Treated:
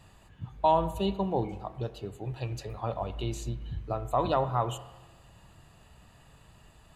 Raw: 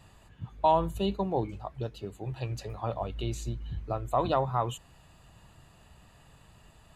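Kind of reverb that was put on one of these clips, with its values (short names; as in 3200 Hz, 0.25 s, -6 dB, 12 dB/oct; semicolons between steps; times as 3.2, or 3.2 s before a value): spring tank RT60 1.2 s, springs 32/41 ms, chirp 75 ms, DRR 12.5 dB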